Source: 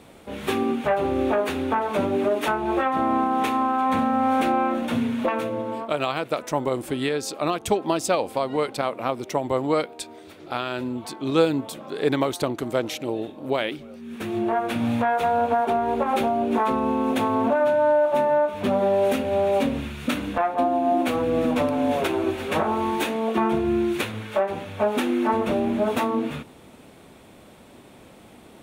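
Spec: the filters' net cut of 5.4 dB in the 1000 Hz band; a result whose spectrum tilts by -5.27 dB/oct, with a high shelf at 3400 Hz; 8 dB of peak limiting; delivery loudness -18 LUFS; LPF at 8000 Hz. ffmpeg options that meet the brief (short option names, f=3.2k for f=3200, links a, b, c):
-af "lowpass=8k,equalizer=f=1k:t=o:g=-7,highshelf=f=3.4k:g=-7,volume=9dB,alimiter=limit=-8.5dB:level=0:latency=1"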